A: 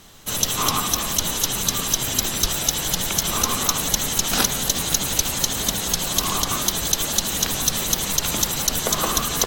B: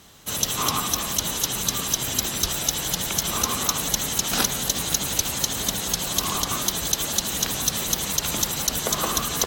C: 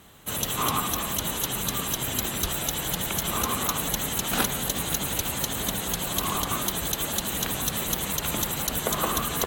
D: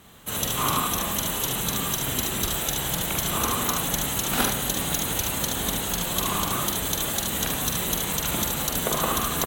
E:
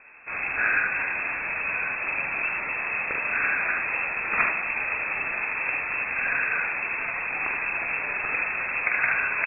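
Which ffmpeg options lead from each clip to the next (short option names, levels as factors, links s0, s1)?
-af "highpass=41,volume=0.75"
-af "equalizer=f=5300:t=o:w=0.75:g=-12.5"
-af "aecho=1:1:45|74:0.501|0.531"
-af "lowpass=f=2300:t=q:w=0.5098,lowpass=f=2300:t=q:w=0.6013,lowpass=f=2300:t=q:w=0.9,lowpass=f=2300:t=q:w=2.563,afreqshift=-2700,volume=1.33"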